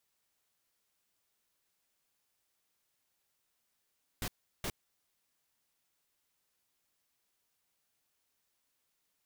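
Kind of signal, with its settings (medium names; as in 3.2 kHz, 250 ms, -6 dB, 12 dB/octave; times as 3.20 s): noise bursts pink, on 0.06 s, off 0.36 s, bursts 2, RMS -36.5 dBFS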